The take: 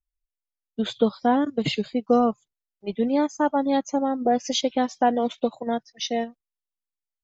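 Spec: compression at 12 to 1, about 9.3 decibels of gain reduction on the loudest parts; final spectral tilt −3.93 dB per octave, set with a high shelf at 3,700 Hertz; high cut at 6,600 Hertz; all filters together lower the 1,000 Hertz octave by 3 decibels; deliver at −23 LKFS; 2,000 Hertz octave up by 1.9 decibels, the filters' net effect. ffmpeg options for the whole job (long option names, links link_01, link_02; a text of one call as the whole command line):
ffmpeg -i in.wav -af "lowpass=6600,equalizer=frequency=1000:width_type=o:gain=-5.5,equalizer=frequency=2000:width_type=o:gain=3.5,highshelf=frequency=3700:gain=3.5,acompressor=threshold=-24dB:ratio=12,volume=7.5dB" out.wav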